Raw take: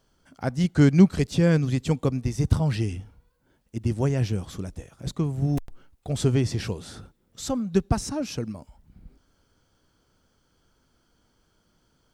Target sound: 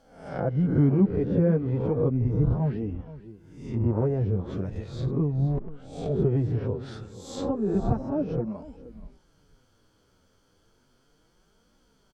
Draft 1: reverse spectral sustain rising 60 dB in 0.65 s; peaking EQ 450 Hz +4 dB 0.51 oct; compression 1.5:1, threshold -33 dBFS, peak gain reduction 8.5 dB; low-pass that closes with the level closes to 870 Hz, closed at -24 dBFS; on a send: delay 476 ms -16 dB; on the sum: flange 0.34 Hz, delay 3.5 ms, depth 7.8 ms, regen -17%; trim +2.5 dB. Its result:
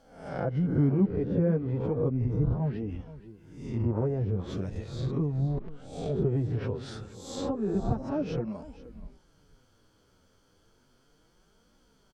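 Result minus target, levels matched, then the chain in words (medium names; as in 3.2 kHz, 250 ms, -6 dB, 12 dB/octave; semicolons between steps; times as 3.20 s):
compression: peak gain reduction +3.5 dB
reverse spectral sustain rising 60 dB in 0.65 s; peaking EQ 450 Hz +4 dB 0.51 oct; compression 1.5:1, threshold -22.5 dBFS, peak gain reduction 5 dB; low-pass that closes with the level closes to 870 Hz, closed at -24 dBFS; on a send: delay 476 ms -16 dB; on the sum: flange 0.34 Hz, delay 3.5 ms, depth 7.8 ms, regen -17%; trim +2.5 dB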